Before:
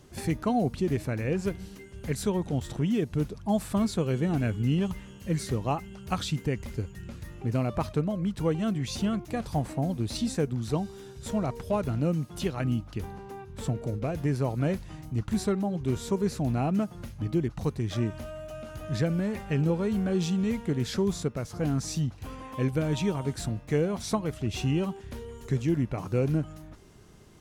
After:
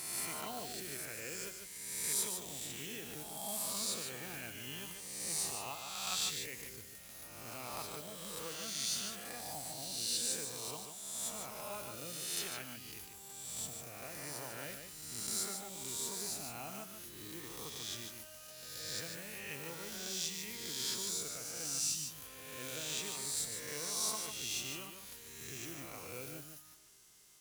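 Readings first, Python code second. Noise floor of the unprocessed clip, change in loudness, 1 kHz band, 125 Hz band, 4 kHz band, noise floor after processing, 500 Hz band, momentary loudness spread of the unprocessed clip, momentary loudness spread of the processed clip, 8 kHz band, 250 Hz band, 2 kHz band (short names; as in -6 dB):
-47 dBFS, -9.5 dB, -11.5 dB, -26.0 dB, +1.5 dB, -53 dBFS, -17.5 dB, 10 LU, 12 LU, +6.5 dB, -23.5 dB, -4.5 dB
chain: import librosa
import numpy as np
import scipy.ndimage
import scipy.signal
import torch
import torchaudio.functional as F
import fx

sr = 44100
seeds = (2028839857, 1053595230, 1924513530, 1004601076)

y = fx.spec_swells(x, sr, rise_s=1.56)
y = fx.mod_noise(y, sr, seeds[0], snr_db=32)
y = scipy.signal.lfilter([1.0, -0.97], [1.0], y)
y = y + 10.0 ** (-6.5 / 20.0) * np.pad(y, (int(147 * sr / 1000.0), 0))[:len(y)]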